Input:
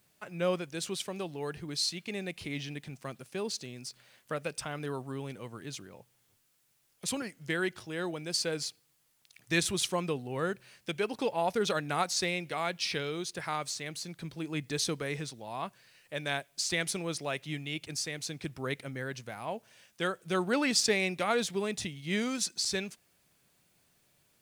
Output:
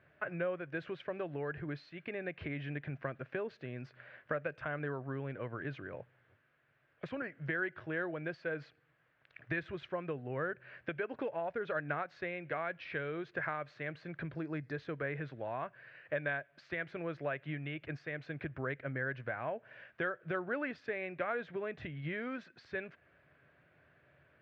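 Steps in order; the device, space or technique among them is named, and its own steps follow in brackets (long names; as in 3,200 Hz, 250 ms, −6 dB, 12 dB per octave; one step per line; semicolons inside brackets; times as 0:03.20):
0:14.35–0:14.77: high shelf with overshoot 3,900 Hz +8 dB, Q 3
bass amplifier (downward compressor 5 to 1, threshold −42 dBFS, peak gain reduction 17 dB; loudspeaker in its box 73–2,300 Hz, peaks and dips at 74 Hz +7 dB, 140 Hz +3 dB, 200 Hz −9 dB, 600 Hz +6 dB, 860 Hz −5 dB, 1,600 Hz +9 dB)
level +5.5 dB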